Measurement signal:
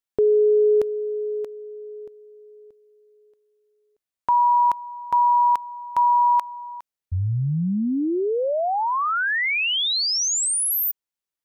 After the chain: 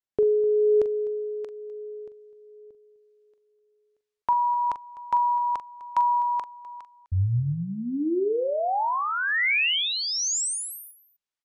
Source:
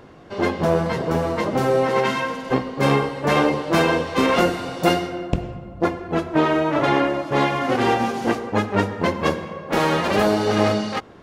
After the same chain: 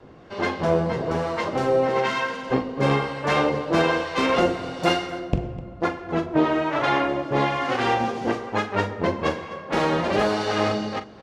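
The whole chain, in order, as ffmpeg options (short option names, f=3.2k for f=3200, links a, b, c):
-filter_complex "[0:a]lowpass=6.9k,adynamicequalizer=threshold=0.02:dfrequency=200:dqfactor=1.2:tfrequency=200:tqfactor=1.2:attack=5:release=100:ratio=0.375:range=2.5:mode=cutabove:tftype=bell,acrossover=split=750[a][b];[a]aeval=exprs='val(0)*(1-0.5/2+0.5/2*cos(2*PI*1.1*n/s))':c=same[c];[b]aeval=exprs='val(0)*(1-0.5/2-0.5/2*cos(2*PI*1.1*n/s))':c=same[d];[c][d]amix=inputs=2:normalize=0,asplit=2[e][f];[f]aecho=0:1:42|253:0.266|0.126[g];[e][g]amix=inputs=2:normalize=0"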